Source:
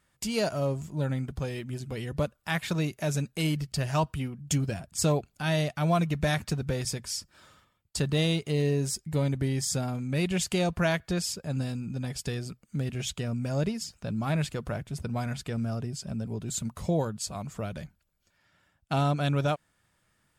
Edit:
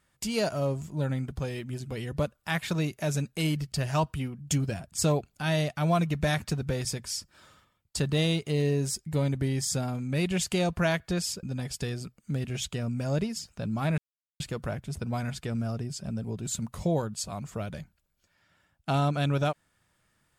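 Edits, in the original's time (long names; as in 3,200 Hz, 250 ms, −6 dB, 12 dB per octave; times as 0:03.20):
0:11.43–0:11.88: remove
0:14.43: splice in silence 0.42 s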